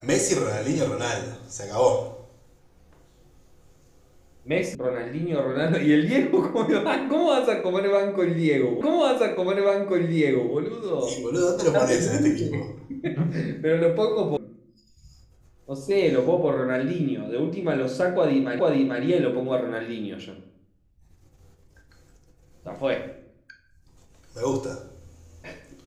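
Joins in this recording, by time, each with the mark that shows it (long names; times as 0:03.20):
0:04.75: cut off before it has died away
0:08.81: the same again, the last 1.73 s
0:14.37: cut off before it has died away
0:18.59: the same again, the last 0.44 s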